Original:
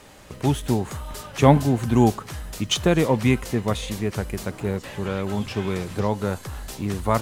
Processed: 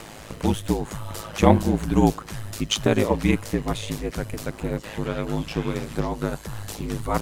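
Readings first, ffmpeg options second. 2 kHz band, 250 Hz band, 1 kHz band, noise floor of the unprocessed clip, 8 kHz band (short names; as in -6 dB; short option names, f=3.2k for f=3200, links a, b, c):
-1.0 dB, -1.0 dB, -1.5 dB, -43 dBFS, -0.5 dB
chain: -filter_complex "[0:a]asplit=2[a][b];[b]acompressor=mode=upward:threshold=-22dB:ratio=2.5,volume=-3dB[c];[a][c]amix=inputs=2:normalize=0,aeval=exprs='val(0)*sin(2*PI*53*n/s)':c=same,volume=-3dB"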